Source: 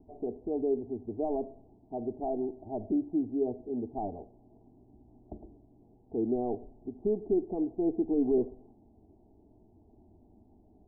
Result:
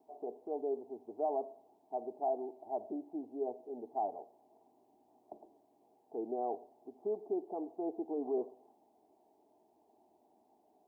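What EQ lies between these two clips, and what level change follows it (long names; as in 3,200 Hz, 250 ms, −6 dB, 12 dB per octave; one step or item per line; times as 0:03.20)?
high-pass filter 870 Hz 12 dB per octave
+6.5 dB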